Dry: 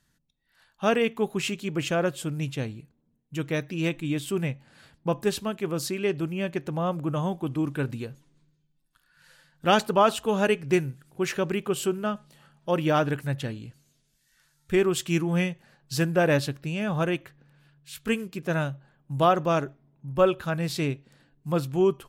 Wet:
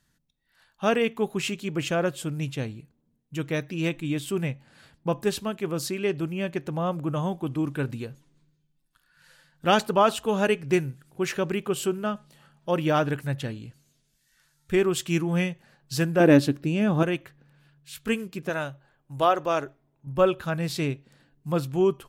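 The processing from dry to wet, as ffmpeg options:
ffmpeg -i in.wav -filter_complex "[0:a]asettb=1/sr,asplit=3[link_01][link_02][link_03];[link_01]atrim=end=16.204[link_04];[link_02]atrim=start=16.2:end=17.03,asetpts=PTS-STARTPTS,afade=type=in:duration=0.004:curve=qsin,afade=type=out:start_time=0.826:duration=0.004:curve=qsin,equalizer=frequency=290:width=1.4:gain=12.5[link_05];[link_03]atrim=start=17.026[link_06];[link_04][link_05]acrossfade=duration=0.004:curve1=hsin:curve2=qsin[link_07];[link_07][link_06]acrossfade=duration=0.004:curve1=qsin:curve2=hsin,asettb=1/sr,asplit=3[link_08][link_09][link_10];[link_08]atrim=end=18.494[link_11];[link_09]atrim=start=18.49:end=20.07,asetpts=PTS-STARTPTS,afade=type=in:duration=0.004:curve=qsin,afade=type=out:start_time=1.576:duration=0.004:curve=qsin,equalizer=frequency=180:width=1.7:gain=-13.5[link_12];[link_10]atrim=start=20.066[link_13];[link_11][link_12]acrossfade=duration=0.004:curve1=hsin:curve2=qsin[link_14];[link_14][link_13]acrossfade=duration=0.004:curve1=qsin:curve2=hsin" out.wav

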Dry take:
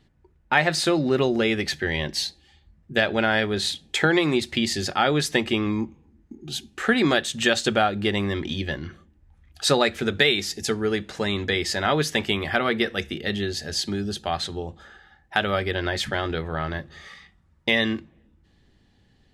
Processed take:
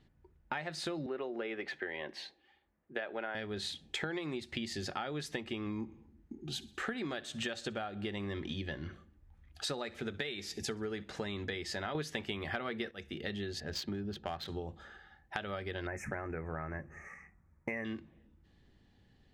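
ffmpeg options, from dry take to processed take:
ffmpeg -i in.wav -filter_complex "[0:a]asettb=1/sr,asplit=3[link_01][link_02][link_03];[link_01]atrim=end=1.064[link_04];[link_02]atrim=start=1.06:end=3.35,asetpts=PTS-STARTPTS,afade=type=in:duration=0.004:curve=qsin,afade=type=out:start_time=2.286:duration=0.004:curve=qsin,acrossover=split=290 2800:gain=0.0708 1 0.126[link_05][link_06][link_07];[link_05][link_06][link_07]amix=inputs=3:normalize=0[link_08];[link_03]atrim=start=3.346[link_09];[link_04][link_08]acrossfade=duration=0.004:curve1=hsin:curve2=qsin[link_10];[link_10][link_09]acrossfade=duration=0.004:curve1=qsin:curve2=hsin,asettb=1/sr,asplit=3[link_11][link_12][link_13];[link_11]atrim=end=5.644[link_14];[link_12]atrim=start=5.64:end=11.04,asetpts=PTS-STARTPTS,afade=type=in:duration=0.004:curve=qsin,afade=type=out:start_time=5.396:duration=0.004:curve=qsin,aecho=1:1:63|126|189|252:0.0794|0.0429|0.0232|0.0125,atrim=end_sample=238140[link_15];[link_13]atrim=start=11.036[link_16];[link_14][link_15]acrossfade=duration=0.004:curve1=hsin:curve2=qsin[link_17];[link_17][link_16]acrossfade=duration=0.004:curve1=qsin:curve2=hsin,asettb=1/sr,asplit=3[link_18][link_19][link_20];[link_18]atrim=end=13.604[link_21];[link_19]atrim=start=13.6:end=14.48,asetpts=PTS-STARTPTS,afade=type=in:duration=0.004:curve=qsin,afade=type=out:start_time=0.876:duration=0.004:curve=qsin,adynamicsmooth=sensitivity=3.5:basefreq=2000[link_22];[link_20]atrim=start=14.476[link_23];[link_21][link_22]acrossfade=duration=0.004:curve1=hsin:curve2=qsin[link_24];[link_24][link_23]acrossfade=duration=0.004:curve1=qsin:curve2=hsin,asettb=1/sr,asplit=3[link_25][link_26][link_27];[link_25]atrim=end=15.874[link_28];[link_26]atrim=start=15.87:end=17.85,asetpts=PTS-STARTPTS,afade=type=in:duration=0.004:curve=qsin,afade=type=out:start_time=1.976:duration=0.004:curve=qsin,asuperstop=centerf=3800:order=12:qfactor=1.2[link_29];[link_27]atrim=start=17.846[link_30];[link_28][link_29]acrossfade=duration=0.004:curve1=hsin:curve2=qsin[link_31];[link_31][link_30]acrossfade=duration=0.004:curve1=qsin:curve2=hsin,asplit=3[link_32][link_33][link_34];[link_32]atrim=end=11.952[link_35];[link_33]atrim=start=11.948:end=12.912,asetpts=PTS-STARTPTS,volume=11.5dB[link_36];[link_34]atrim=start=12.908[link_37];[link_35][link_36]acrossfade=duration=0.004:curve1=hsin:curve2=hsin[link_38];[link_38][link_37]acrossfade=duration=0.004:curve1=hsin:curve2=hsin,highshelf=frequency=5400:gain=-7,acompressor=threshold=-30dB:ratio=10,volume=-5dB" out.wav

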